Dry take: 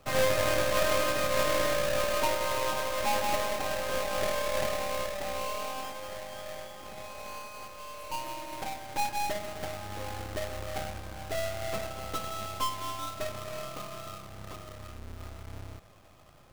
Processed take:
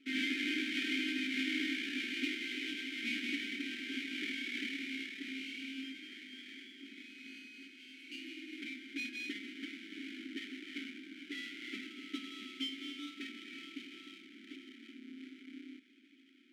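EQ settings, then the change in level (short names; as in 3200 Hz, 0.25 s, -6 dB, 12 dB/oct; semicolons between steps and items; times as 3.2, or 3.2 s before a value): vowel filter i; brick-wall FIR high-pass 210 Hz; brick-wall FIR band-stop 410–1300 Hz; +9.5 dB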